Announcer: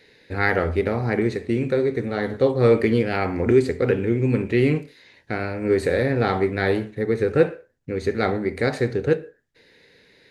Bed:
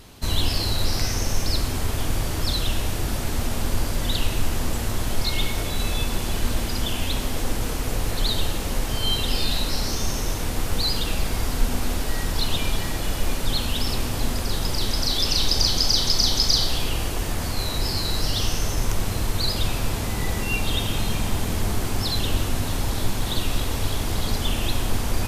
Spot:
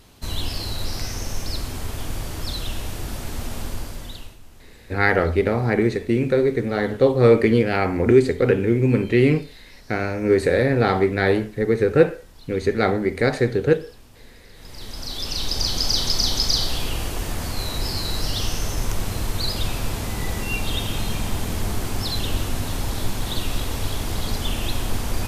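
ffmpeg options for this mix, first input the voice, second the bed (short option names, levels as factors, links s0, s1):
-filter_complex "[0:a]adelay=4600,volume=1.33[s0];[1:a]volume=7.94,afade=t=out:st=3.6:d=0.78:silence=0.112202,afade=t=in:st=14.54:d=1.4:silence=0.0749894[s1];[s0][s1]amix=inputs=2:normalize=0"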